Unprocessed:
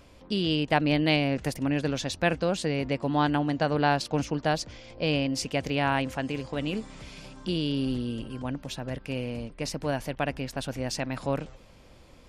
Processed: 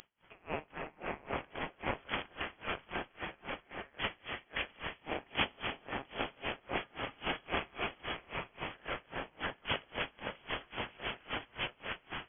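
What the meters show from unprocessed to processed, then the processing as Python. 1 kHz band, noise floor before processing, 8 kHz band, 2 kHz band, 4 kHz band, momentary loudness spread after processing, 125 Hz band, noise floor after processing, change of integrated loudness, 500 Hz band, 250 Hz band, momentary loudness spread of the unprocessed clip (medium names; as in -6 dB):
-9.5 dB, -53 dBFS, under -35 dB, -5.5 dB, -7.0 dB, 7 LU, -19.0 dB, -67 dBFS, -11.0 dB, -13.0 dB, -19.0 dB, 10 LU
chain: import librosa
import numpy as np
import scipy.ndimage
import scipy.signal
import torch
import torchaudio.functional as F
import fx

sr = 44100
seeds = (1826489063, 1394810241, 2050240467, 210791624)

p1 = fx.recorder_agc(x, sr, target_db=-16.0, rise_db_per_s=29.0, max_gain_db=30)
p2 = scipy.signal.sosfilt(scipy.signal.butter(4, 1300.0, 'highpass', fs=sr, output='sos'), p1)
p3 = fx.transient(p2, sr, attack_db=-8, sustain_db=12)
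p4 = np.diff(p3, prepend=0.0)
p5 = fx.doubler(p4, sr, ms=21.0, db=-13.5)
p6 = p5 + fx.echo_feedback(p5, sr, ms=699, feedback_pct=39, wet_db=-3, dry=0)
p7 = fx.rev_gated(p6, sr, seeds[0], gate_ms=440, shape='flat', drr_db=2.0)
p8 = (np.kron(p7[::8], np.eye(8)[0]) * 8)[:len(p7)]
p9 = fx.freq_invert(p8, sr, carrier_hz=3300)
p10 = p9 * 10.0 ** (-30 * (0.5 - 0.5 * np.cos(2.0 * np.pi * 3.7 * np.arange(len(p9)) / sr)) / 20.0)
y = p10 * 10.0 ** (1.5 / 20.0)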